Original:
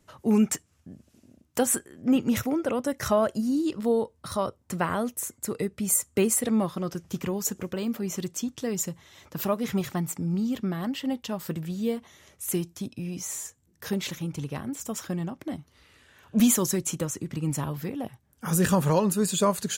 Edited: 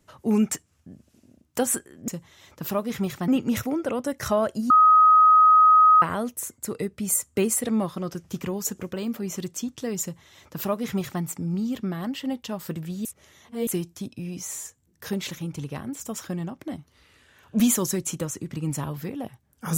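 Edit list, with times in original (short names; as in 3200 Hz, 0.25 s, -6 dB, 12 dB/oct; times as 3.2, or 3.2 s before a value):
3.5–4.82 bleep 1260 Hz -11.5 dBFS
8.82–10.02 copy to 2.08
11.85–12.47 reverse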